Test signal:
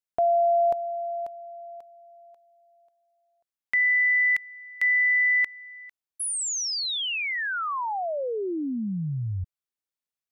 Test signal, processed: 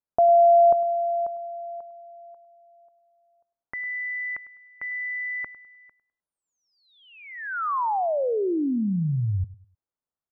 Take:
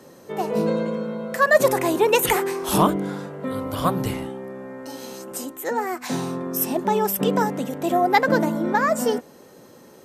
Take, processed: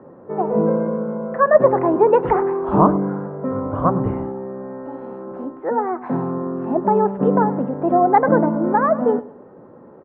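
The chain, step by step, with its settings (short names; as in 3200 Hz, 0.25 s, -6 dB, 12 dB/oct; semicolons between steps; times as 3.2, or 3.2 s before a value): LPF 1300 Hz 24 dB/oct; on a send: feedback echo 0.102 s, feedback 32%, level -18 dB; on the sum: gain +4.5 dB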